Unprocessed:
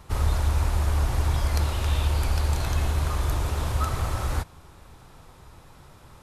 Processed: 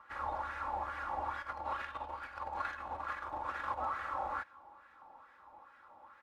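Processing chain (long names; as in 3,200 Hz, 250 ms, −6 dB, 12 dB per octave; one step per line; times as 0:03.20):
parametric band 9,000 Hz −7 dB 2.8 octaves
comb filter 3.6 ms, depth 67%
0:01.42–0:03.78: compressor whose output falls as the input rises −25 dBFS, ratio −1
LFO wah 2.3 Hz 790–1,700 Hz, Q 3.8
level +3 dB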